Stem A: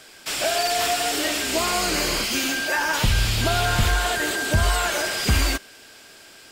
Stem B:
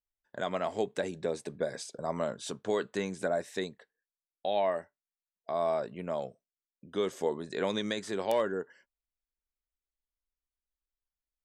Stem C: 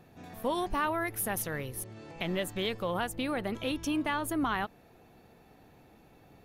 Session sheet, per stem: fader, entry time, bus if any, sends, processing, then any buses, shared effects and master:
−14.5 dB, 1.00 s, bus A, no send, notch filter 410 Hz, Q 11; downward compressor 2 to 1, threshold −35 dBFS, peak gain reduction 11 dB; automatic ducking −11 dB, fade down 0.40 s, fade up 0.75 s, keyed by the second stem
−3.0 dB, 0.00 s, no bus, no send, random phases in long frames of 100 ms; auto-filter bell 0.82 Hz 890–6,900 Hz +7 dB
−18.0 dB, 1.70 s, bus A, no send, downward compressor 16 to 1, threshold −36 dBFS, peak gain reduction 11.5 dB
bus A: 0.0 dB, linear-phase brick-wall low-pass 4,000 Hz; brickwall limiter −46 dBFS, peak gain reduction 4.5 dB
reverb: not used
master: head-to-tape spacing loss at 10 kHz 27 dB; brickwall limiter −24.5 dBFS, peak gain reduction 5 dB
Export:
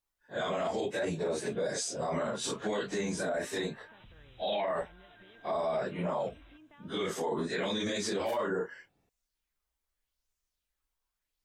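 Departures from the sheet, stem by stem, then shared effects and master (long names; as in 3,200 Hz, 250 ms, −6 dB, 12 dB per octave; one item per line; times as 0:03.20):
stem B −3.0 dB → +6.5 dB
stem C: entry 1.70 s → 2.65 s
master: missing head-to-tape spacing loss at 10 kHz 27 dB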